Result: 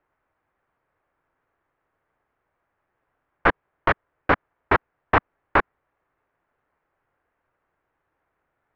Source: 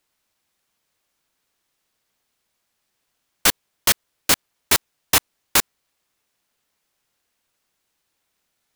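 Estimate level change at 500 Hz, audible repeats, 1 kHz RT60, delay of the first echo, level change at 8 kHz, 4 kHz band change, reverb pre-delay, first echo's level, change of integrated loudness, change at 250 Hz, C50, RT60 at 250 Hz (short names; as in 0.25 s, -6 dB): +6.0 dB, none, none, none, under -40 dB, -18.5 dB, none, none, -4.0 dB, +3.5 dB, none, none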